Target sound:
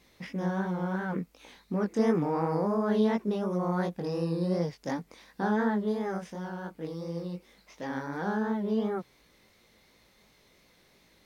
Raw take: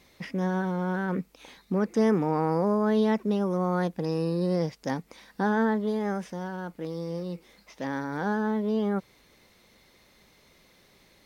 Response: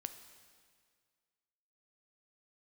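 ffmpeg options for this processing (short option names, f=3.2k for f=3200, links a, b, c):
-af "flanger=delay=17:depth=6.5:speed=2.8"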